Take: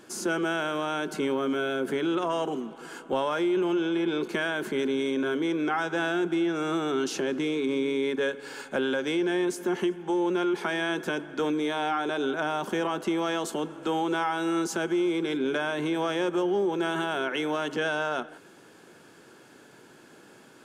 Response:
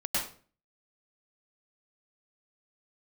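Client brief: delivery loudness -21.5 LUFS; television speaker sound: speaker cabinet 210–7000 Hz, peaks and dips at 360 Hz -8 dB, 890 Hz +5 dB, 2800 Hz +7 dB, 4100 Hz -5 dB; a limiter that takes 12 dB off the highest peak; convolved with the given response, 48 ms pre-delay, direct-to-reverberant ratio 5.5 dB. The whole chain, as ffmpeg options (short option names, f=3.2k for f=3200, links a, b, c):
-filter_complex "[0:a]alimiter=level_in=4dB:limit=-24dB:level=0:latency=1,volume=-4dB,asplit=2[a][b];[1:a]atrim=start_sample=2205,adelay=48[c];[b][c]afir=irnorm=-1:irlink=0,volume=-13dB[d];[a][d]amix=inputs=2:normalize=0,highpass=f=210:w=0.5412,highpass=f=210:w=1.3066,equalizer=f=360:t=q:w=4:g=-8,equalizer=f=890:t=q:w=4:g=5,equalizer=f=2.8k:t=q:w=4:g=7,equalizer=f=4.1k:t=q:w=4:g=-5,lowpass=f=7k:w=0.5412,lowpass=f=7k:w=1.3066,volume=15dB"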